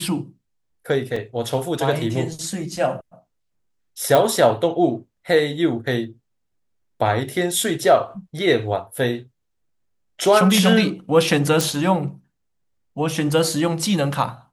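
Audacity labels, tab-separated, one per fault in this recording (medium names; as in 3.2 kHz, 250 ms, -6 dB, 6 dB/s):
1.160000	1.160000	dropout 3.7 ms
4.150000	4.150000	pop
11.610000	11.610000	pop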